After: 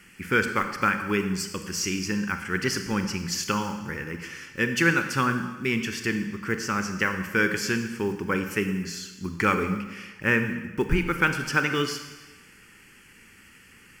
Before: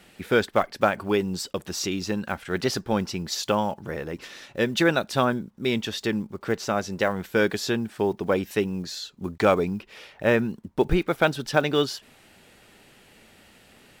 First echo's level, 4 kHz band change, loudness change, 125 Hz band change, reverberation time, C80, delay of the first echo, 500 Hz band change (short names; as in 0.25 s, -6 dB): none, -2.0 dB, -0.5 dB, +0.5 dB, 1.2 s, 10.0 dB, none, -6.5 dB